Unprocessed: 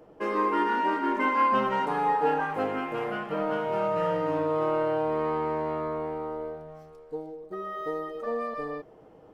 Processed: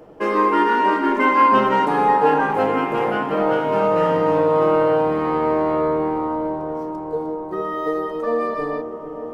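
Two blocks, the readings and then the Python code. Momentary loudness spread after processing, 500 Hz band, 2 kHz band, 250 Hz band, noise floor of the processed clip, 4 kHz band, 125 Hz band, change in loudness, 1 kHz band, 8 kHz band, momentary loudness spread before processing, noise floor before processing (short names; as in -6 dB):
11 LU, +9.5 dB, +8.5 dB, +10.0 dB, -32 dBFS, +8.5 dB, +8.5 dB, +9.0 dB, +9.0 dB, n/a, 13 LU, -52 dBFS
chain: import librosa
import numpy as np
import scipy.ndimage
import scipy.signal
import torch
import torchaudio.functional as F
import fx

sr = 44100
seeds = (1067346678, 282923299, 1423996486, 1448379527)

y = fx.echo_wet_lowpass(x, sr, ms=447, feedback_pct=78, hz=830.0, wet_db=-9.5)
y = y * librosa.db_to_amplitude(8.5)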